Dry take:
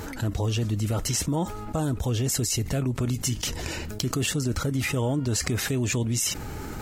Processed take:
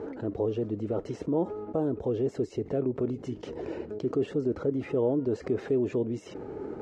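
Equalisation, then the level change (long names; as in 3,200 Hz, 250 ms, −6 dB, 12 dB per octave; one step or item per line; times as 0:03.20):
resonant band-pass 420 Hz, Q 2.6
high-frequency loss of the air 66 metres
+7.0 dB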